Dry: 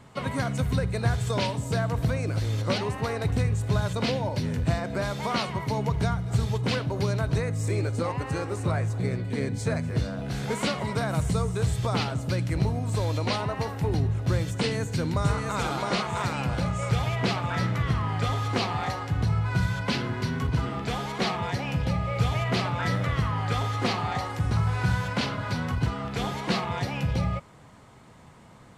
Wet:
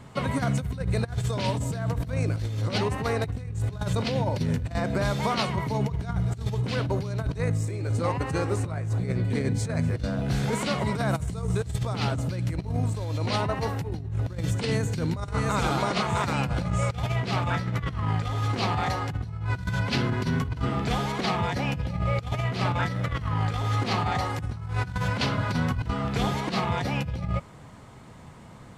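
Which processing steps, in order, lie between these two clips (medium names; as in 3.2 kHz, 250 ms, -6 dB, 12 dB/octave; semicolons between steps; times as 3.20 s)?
bass shelf 240 Hz +4 dB; compressor with a negative ratio -26 dBFS, ratio -0.5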